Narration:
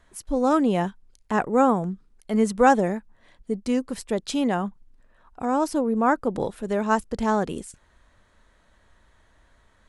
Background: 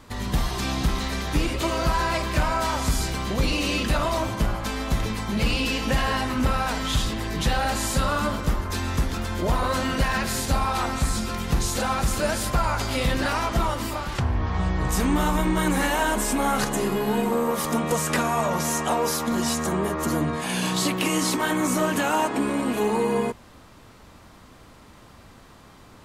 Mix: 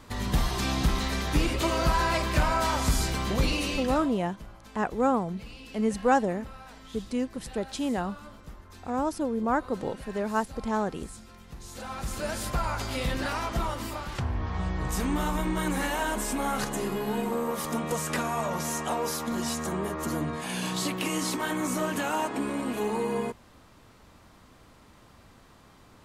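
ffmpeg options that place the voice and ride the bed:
-filter_complex "[0:a]adelay=3450,volume=-5.5dB[a];[1:a]volume=14dB,afade=t=out:st=3.36:d=0.8:silence=0.1,afade=t=in:st=11.59:d=0.88:silence=0.16788[b];[a][b]amix=inputs=2:normalize=0"

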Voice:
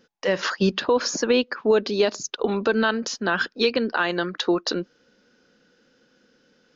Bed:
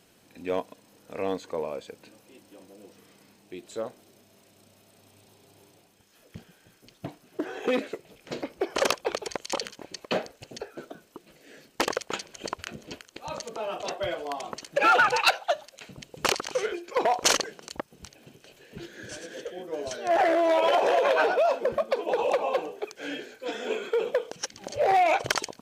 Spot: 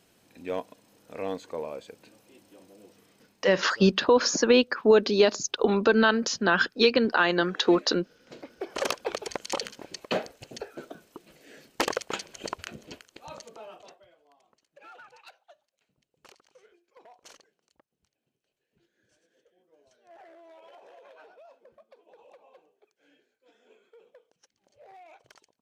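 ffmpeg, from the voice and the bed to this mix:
-filter_complex "[0:a]adelay=3200,volume=0.5dB[a];[1:a]volume=10dB,afade=t=out:st=2.82:d=0.92:silence=0.298538,afade=t=in:st=8.27:d=1.1:silence=0.223872,afade=t=out:st=12.39:d=1.66:silence=0.0334965[b];[a][b]amix=inputs=2:normalize=0"

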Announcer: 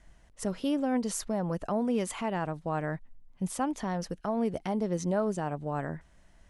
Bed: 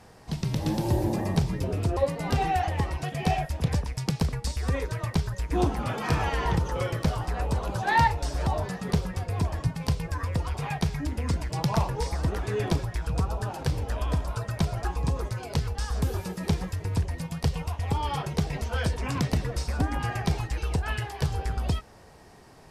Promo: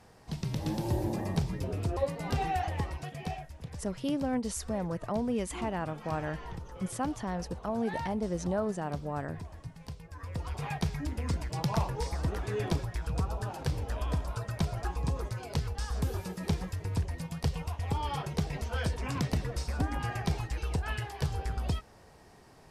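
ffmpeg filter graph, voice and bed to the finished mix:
-filter_complex "[0:a]adelay=3400,volume=-2.5dB[a];[1:a]volume=6.5dB,afade=t=out:st=2.77:d=0.73:silence=0.281838,afade=t=in:st=10.11:d=0.52:silence=0.251189[b];[a][b]amix=inputs=2:normalize=0"

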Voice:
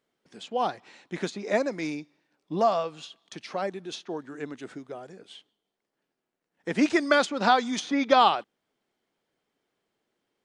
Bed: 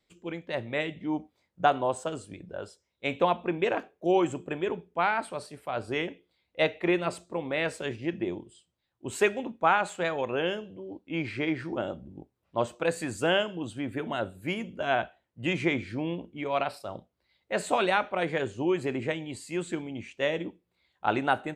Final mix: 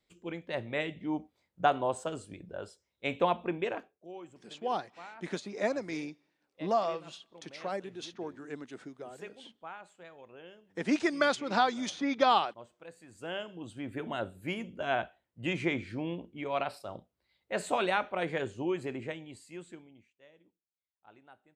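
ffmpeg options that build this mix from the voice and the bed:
-filter_complex "[0:a]adelay=4100,volume=-5.5dB[a];[1:a]volume=15dB,afade=t=out:st=3.43:d=0.64:silence=0.112202,afade=t=in:st=13.07:d=1.01:silence=0.125893,afade=t=out:st=18.42:d=1.71:silence=0.0421697[b];[a][b]amix=inputs=2:normalize=0"

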